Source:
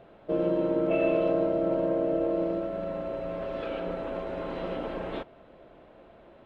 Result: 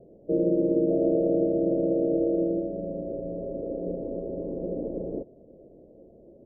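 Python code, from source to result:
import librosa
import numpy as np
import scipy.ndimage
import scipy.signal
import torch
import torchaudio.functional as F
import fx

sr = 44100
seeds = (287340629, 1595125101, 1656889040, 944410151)

y = scipy.signal.sosfilt(scipy.signal.butter(6, 530.0, 'lowpass', fs=sr, output='sos'), x)
y = fx.low_shelf(y, sr, hz=140.0, db=-6.0)
y = F.gain(torch.from_numpy(y), 5.5).numpy()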